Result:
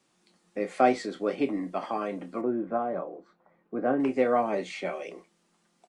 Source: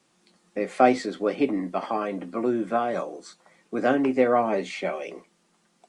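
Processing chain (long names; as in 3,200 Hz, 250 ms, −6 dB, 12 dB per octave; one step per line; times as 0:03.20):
0:02.41–0:04.00: low-pass filter 1,200 Hz 12 dB per octave
double-tracking delay 29 ms −12 dB
level −4 dB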